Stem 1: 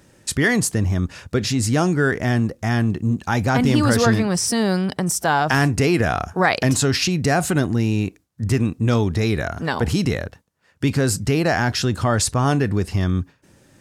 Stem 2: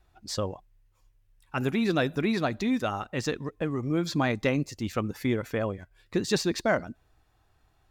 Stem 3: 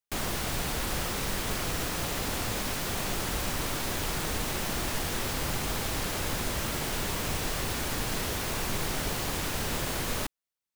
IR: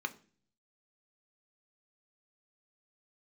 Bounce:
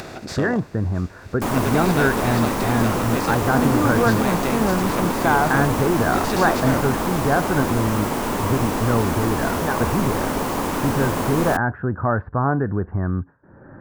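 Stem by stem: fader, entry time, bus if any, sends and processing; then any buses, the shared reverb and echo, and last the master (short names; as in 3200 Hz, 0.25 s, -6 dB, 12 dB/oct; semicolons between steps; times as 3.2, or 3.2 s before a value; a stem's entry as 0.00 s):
+1.5 dB, 0.00 s, no send, Chebyshev low-pass 1600 Hz, order 5; low shelf 400 Hz -4.5 dB
-5.0 dB, 0.00 s, no send, per-bin compression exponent 0.4
+2.0 dB, 1.30 s, no send, graphic EQ 250/500/1000/4000 Hz +12/+5/+11/-4 dB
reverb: off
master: upward compressor, threshold -28 dBFS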